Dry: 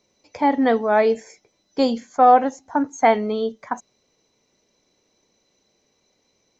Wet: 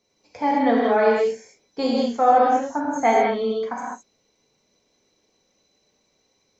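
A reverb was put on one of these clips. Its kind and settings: gated-style reverb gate 240 ms flat, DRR -4.5 dB; trim -6 dB

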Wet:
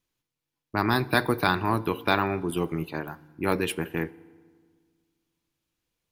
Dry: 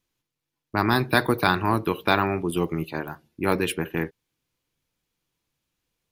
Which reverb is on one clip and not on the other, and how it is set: FDN reverb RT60 1.7 s, low-frequency decay 1.3×, high-frequency decay 0.65×, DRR 19.5 dB; trim -2.5 dB

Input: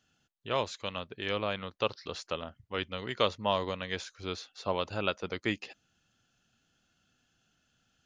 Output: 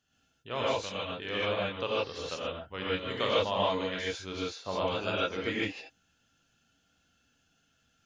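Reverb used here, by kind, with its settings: gated-style reverb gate 180 ms rising, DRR -7 dB; trim -5.5 dB

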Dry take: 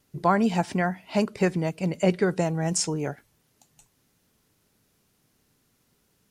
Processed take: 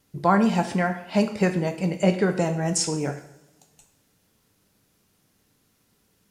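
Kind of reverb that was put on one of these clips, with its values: two-slope reverb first 0.68 s, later 2.1 s, from -22 dB, DRR 6 dB; trim +1 dB

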